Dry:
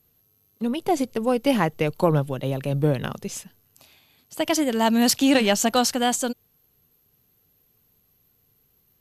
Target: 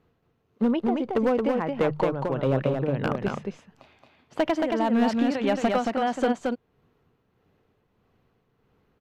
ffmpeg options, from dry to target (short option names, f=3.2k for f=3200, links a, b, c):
-af "lowpass=1.7k,lowshelf=f=180:g=-7,bandreject=f=50:t=h:w=6,bandreject=f=100:t=h:w=6,bandreject=f=150:t=h:w=6,acompressor=threshold=-25dB:ratio=20,tremolo=f=1.6:d=0.62,asoftclip=type=hard:threshold=-25dB,aecho=1:1:224:0.668,volume=8.5dB"